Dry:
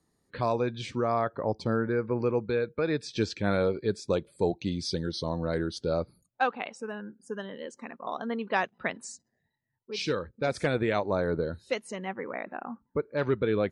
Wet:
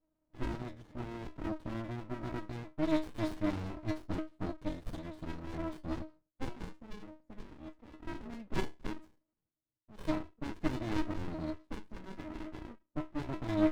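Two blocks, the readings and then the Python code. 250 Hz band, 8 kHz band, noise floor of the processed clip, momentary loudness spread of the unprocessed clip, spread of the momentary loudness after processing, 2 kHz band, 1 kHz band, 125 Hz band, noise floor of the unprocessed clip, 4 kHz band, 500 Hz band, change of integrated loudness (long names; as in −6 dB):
−4.0 dB, −14.0 dB, below −85 dBFS, 11 LU, 14 LU, −13.0 dB, −12.0 dB, −7.0 dB, −78 dBFS, −12.5 dB, −13.5 dB, −9.0 dB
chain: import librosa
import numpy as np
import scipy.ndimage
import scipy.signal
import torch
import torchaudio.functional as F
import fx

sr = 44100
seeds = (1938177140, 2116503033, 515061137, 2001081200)

y = fx.stiff_resonator(x, sr, f0_hz=310.0, decay_s=0.28, stiffness=0.008)
y = fx.env_lowpass(y, sr, base_hz=630.0, full_db=-40.0)
y = fx.running_max(y, sr, window=65)
y = y * librosa.db_to_amplitude(13.0)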